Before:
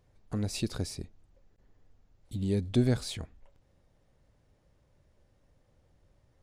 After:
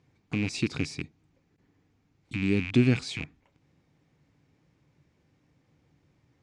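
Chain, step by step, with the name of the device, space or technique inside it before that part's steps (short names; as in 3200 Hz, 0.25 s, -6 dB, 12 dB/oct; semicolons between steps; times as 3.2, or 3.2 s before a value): car door speaker with a rattle (rattling part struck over -38 dBFS, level -28 dBFS; speaker cabinet 100–7600 Hz, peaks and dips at 150 Hz +8 dB, 290 Hz +8 dB, 580 Hz -9 dB, 2300 Hz +7 dB); gain +1.5 dB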